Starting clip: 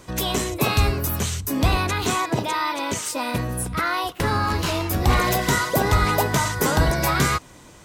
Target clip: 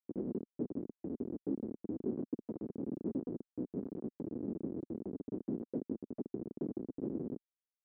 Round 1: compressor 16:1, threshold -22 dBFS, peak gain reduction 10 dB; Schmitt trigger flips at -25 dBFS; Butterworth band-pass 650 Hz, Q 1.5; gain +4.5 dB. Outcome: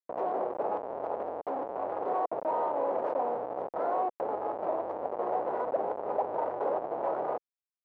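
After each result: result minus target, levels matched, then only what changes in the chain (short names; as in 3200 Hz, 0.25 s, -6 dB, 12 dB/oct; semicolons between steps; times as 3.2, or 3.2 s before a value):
250 Hz band -15.0 dB; compressor: peak gain reduction -5.5 dB
change: Butterworth band-pass 300 Hz, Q 1.5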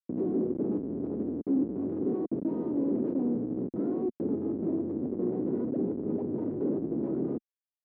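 compressor: peak gain reduction -5.5 dB
change: compressor 16:1, threshold -28 dBFS, peak gain reduction 16 dB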